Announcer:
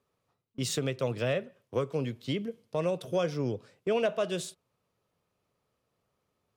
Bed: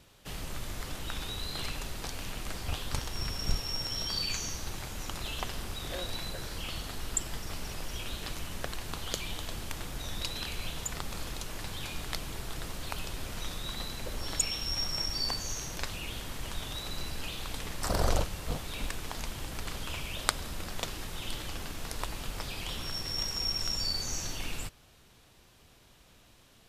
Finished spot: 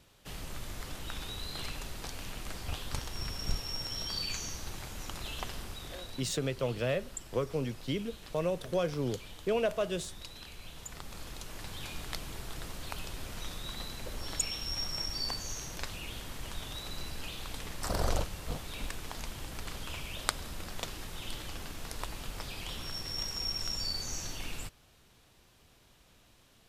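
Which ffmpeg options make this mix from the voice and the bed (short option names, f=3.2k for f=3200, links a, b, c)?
-filter_complex "[0:a]adelay=5600,volume=-2dB[a];[1:a]volume=5dB,afade=t=out:st=5.52:d=0.76:silence=0.398107,afade=t=in:st=10.62:d=1.25:silence=0.398107[b];[a][b]amix=inputs=2:normalize=0"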